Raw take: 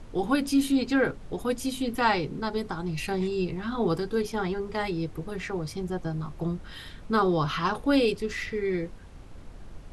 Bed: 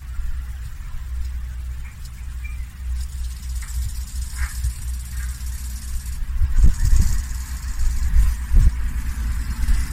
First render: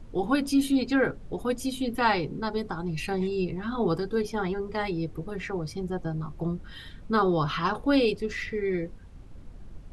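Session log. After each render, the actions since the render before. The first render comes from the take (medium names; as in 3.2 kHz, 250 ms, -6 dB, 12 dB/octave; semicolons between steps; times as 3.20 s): noise reduction 7 dB, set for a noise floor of -45 dBFS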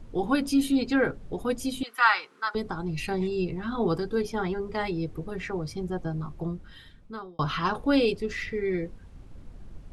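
1.83–2.55 s: resonant high-pass 1.3 kHz, resonance Q 3.1; 6.22–7.39 s: fade out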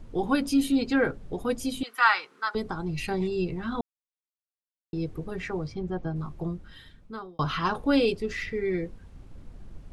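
3.81–4.93 s: mute; 5.67–6.16 s: distance through air 140 m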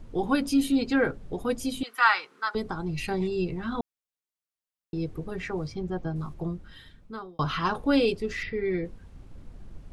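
5.57–6.34 s: treble shelf 6.2 kHz +8.5 dB; 8.43–8.85 s: steep low-pass 5.2 kHz 72 dB/octave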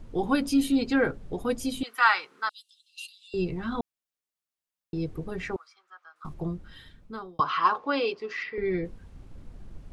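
2.49–3.34 s: rippled Chebyshev high-pass 2.7 kHz, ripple 6 dB; 5.56–6.25 s: ladder high-pass 1.2 kHz, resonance 75%; 7.40–8.58 s: cabinet simulation 460–5200 Hz, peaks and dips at 630 Hz -3 dB, 1.1 kHz +9 dB, 3.7 kHz -5 dB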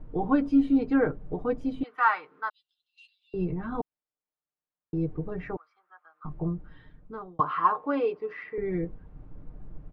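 low-pass 1.3 kHz 12 dB/octave; comb 6.6 ms, depth 43%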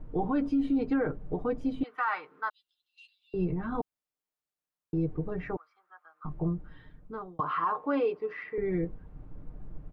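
peak limiter -20.5 dBFS, peak gain reduction 10.5 dB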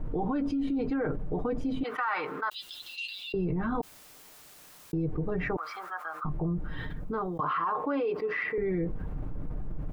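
peak limiter -24.5 dBFS, peak gain reduction 4 dB; level flattener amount 70%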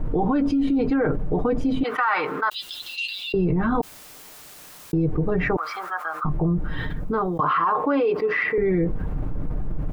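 trim +8.5 dB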